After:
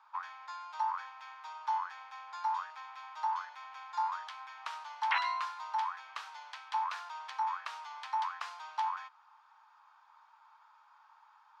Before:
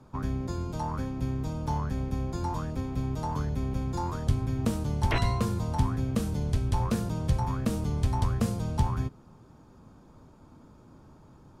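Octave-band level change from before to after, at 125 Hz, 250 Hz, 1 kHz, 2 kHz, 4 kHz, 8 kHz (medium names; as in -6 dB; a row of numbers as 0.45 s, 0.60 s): under -40 dB, under -40 dB, +2.5 dB, +2.0 dB, -2.5 dB, under -10 dB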